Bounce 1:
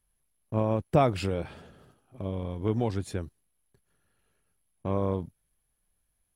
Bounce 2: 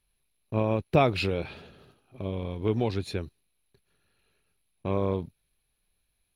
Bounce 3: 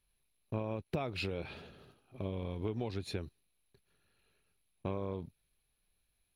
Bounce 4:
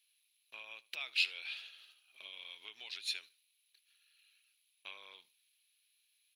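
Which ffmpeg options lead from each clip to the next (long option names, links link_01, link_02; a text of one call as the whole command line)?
ffmpeg -i in.wav -af "equalizer=frequency=400:width_type=o:width=0.33:gain=4,equalizer=frequency=2500:width_type=o:width=0.33:gain=10,equalizer=frequency=4000:width_type=o:width=0.33:gain=12,equalizer=frequency=8000:width_type=o:width=0.33:gain=-10" out.wav
ffmpeg -i in.wav -af "acompressor=threshold=-29dB:ratio=16,volume=-3dB" out.wav
ffmpeg -i in.wav -af "highpass=frequency=2900:width_type=q:width=1.9,aecho=1:1:75|150:0.0794|0.0183,volume=5dB" out.wav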